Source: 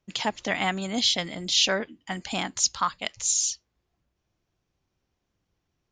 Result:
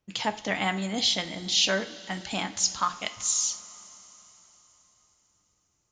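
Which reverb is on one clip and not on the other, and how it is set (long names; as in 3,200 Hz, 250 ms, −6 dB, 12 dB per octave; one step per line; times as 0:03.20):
coupled-rooms reverb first 0.36 s, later 4.3 s, from −18 dB, DRR 7.5 dB
level −2 dB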